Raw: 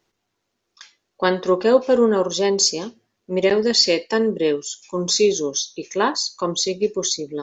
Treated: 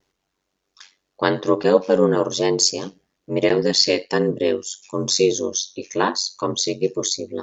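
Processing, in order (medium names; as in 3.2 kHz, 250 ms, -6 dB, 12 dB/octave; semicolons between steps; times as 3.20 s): vibrato 0.45 Hz 22 cents; ring modulator 47 Hz; trim +2.5 dB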